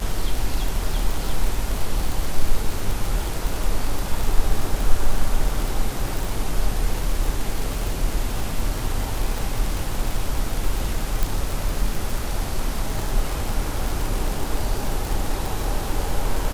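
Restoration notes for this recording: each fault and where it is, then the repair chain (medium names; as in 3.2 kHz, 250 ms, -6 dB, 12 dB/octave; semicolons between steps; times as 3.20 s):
crackle 57 per s -22 dBFS
11.23 s: pop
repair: de-click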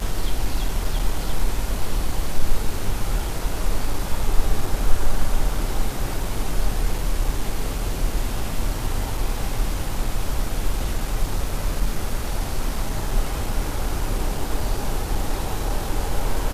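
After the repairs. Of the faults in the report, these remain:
11.23 s: pop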